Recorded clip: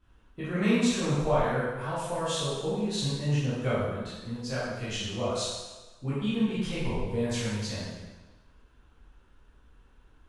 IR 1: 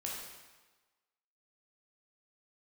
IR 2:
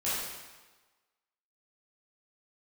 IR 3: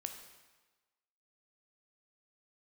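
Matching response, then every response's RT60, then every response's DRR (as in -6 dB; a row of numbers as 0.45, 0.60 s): 2; 1.3, 1.3, 1.3 s; -3.5, -11.0, 5.0 dB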